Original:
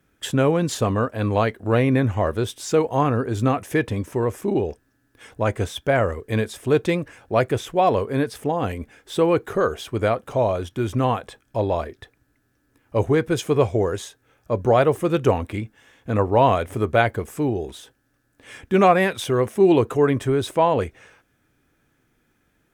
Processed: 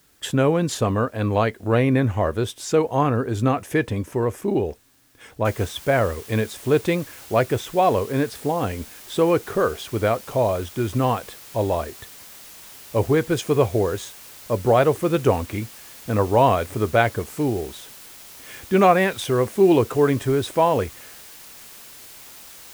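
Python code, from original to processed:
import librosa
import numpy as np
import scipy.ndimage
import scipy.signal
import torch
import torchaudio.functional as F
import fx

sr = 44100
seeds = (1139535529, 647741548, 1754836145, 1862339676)

y = fx.noise_floor_step(x, sr, seeds[0], at_s=5.45, before_db=-60, after_db=-43, tilt_db=0.0)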